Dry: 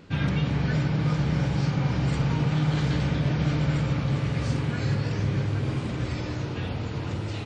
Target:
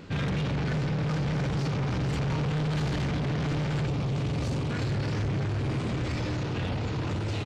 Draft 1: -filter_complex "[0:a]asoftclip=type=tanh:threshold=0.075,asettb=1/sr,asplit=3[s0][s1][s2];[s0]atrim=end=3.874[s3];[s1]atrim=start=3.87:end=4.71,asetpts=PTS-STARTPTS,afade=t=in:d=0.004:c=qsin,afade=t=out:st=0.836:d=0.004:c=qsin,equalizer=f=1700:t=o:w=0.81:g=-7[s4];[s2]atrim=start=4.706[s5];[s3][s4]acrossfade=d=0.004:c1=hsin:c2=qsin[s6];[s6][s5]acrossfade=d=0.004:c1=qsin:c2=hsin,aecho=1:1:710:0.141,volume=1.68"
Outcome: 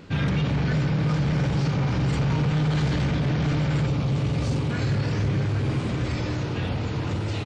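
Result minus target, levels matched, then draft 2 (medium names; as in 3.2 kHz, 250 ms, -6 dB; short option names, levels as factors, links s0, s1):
saturation: distortion -6 dB
-filter_complex "[0:a]asoftclip=type=tanh:threshold=0.0299,asettb=1/sr,asplit=3[s0][s1][s2];[s0]atrim=end=3.874[s3];[s1]atrim=start=3.87:end=4.71,asetpts=PTS-STARTPTS,afade=t=in:d=0.004:c=qsin,afade=t=out:st=0.836:d=0.004:c=qsin,equalizer=f=1700:t=o:w=0.81:g=-7[s4];[s2]atrim=start=4.706[s5];[s3][s4]acrossfade=d=0.004:c1=hsin:c2=qsin[s6];[s6][s5]acrossfade=d=0.004:c1=qsin:c2=hsin,aecho=1:1:710:0.141,volume=1.68"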